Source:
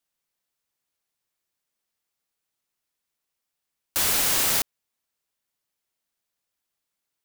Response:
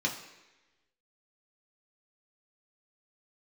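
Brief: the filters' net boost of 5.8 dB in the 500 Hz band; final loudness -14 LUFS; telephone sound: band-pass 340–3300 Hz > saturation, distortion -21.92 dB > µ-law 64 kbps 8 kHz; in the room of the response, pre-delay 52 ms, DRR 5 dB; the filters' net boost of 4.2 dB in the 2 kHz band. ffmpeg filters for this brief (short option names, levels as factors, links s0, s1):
-filter_complex "[0:a]equalizer=f=500:t=o:g=8,equalizer=f=2000:t=o:g=5.5,asplit=2[s0][s1];[1:a]atrim=start_sample=2205,adelay=52[s2];[s1][s2]afir=irnorm=-1:irlink=0,volume=0.251[s3];[s0][s3]amix=inputs=2:normalize=0,highpass=340,lowpass=3300,asoftclip=threshold=0.141,volume=4.73" -ar 8000 -c:a pcm_mulaw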